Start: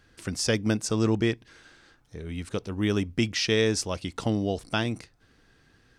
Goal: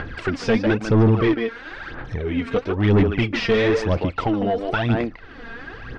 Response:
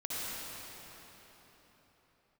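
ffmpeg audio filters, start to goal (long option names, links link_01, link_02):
-filter_complex "[0:a]asplit=2[link_01][link_02];[link_02]acompressor=mode=upward:threshold=-30dB:ratio=2.5,volume=1dB[link_03];[link_01][link_03]amix=inputs=2:normalize=0,asplit=2[link_04][link_05];[link_05]adelay=150,highpass=300,lowpass=3400,asoftclip=type=hard:threshold=-13.5dB,volume=-7dB[link_06];[link_04][link_06]amix=inputs=2:normalize=0,aphaser=in_gain=1:out_gain=1:delay=4.4:decay=0.67:speed=1:type=sinusoidal,asettb=1/sr,asplit=3[link_07][link_08][link_09];[link_07]atrim=end=3.934[link_10];[link_08]atrim=start=3.93:end=4.9,asetpts=PTS-STARTPTS,afade=type=in:duration=0.004:curve=qsin,afade=type=out:start_time=0.966:duration=0.004:curve=qsin,acompressor=threshold=-19dB:ratio=6[link_11];[link_09]atrim=start=4.896[link_12];[link_10][link_11]acrossfade=duration=0.004:curve1=hsin:curve2=qsin[link_13];[link_13][link_12]acrossfade=duration=0.004:curve1=qsin:curve2=hsin,asplit=2[link_14][link_15];[link_15]highpass=frequency=720:poles=1,volume=13dB,asoftclip=type=tanh:threshold=-9dB[link_16];[link_14][link_16]amix=inputs=2:normalize=0,lowpass=frequency=1400:poles=1,volume=-6dB,asoftclip=type=tanh:threshold=-14.5dB,lowpass=3300,lowshelf=frequency=130:gain=8,volume=1dB"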